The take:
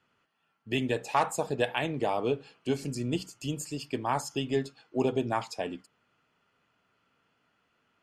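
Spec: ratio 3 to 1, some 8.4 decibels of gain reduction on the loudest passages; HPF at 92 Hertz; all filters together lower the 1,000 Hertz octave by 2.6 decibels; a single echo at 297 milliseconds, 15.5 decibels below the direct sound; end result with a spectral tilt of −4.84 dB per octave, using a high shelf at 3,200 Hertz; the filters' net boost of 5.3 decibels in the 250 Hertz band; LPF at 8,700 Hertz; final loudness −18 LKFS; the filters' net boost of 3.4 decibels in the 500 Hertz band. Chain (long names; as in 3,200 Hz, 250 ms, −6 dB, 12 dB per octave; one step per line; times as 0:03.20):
high-pass filter 92 Hz
low-pass filter 8,700 Hz
parametric band 250 Hz +5.5 dB
parametric band 500 Hz +3.5 dB
parametric band 1,000 Hz −5.5 dB
high-shelf EQ 3,200 Hz +4 dB
downward compressor 3 to 1, threshold −30 dBFS
single-tap delay 297 ms −15.5 dB
level +16.5 dB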